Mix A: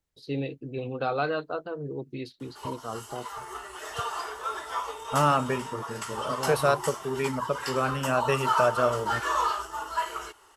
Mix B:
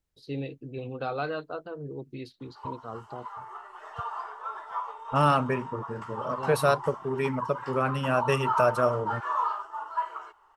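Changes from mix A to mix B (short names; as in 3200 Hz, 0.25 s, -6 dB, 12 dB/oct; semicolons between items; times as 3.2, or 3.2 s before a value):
first voice -4.0 dB; background: add band-pass 970 Hz, Q 2; master: add low shelf 140 Hz +4 dB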